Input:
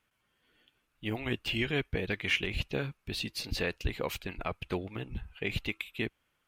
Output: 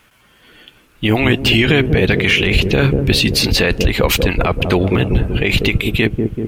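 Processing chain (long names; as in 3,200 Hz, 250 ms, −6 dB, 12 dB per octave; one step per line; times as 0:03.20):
on a send: delay with a low-pass on its return 191 ms, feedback 62%, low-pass 450 Hz, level −6.5 dB
on the sum: boost into a limiter +27.5 dB
level −3 dB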